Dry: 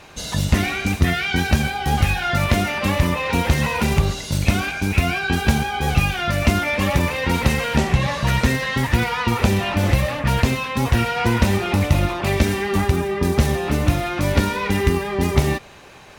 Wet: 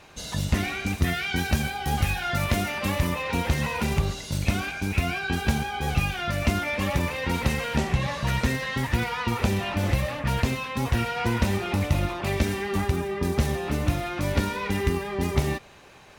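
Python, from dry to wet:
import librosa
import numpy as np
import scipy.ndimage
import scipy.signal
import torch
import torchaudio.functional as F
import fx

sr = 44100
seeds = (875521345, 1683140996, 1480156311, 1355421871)

y = fx.high_shelf(x, sr, hz=7900.0, db=6.0, at=(0.98, 3.23))
y = y * 10.0 ** (-6.5 / 20.0)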